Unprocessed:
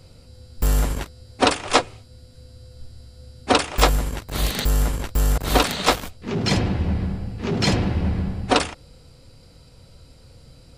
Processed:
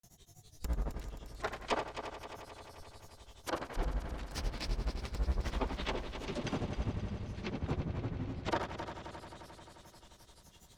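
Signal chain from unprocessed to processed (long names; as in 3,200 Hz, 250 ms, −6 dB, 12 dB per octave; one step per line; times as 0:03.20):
treble cut that deepens with the level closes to 1,100 Hz, closed at −17 dBFS
first-order pre-emphasis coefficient 0.8
granular cloud, grains 12 per second, spray 37 ms, pitch spread up and down by 7 semitones
on a send: echo machine with several playback heads 88 ms, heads first and third, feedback 74%, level −11 dB
on the sum: level +1 dB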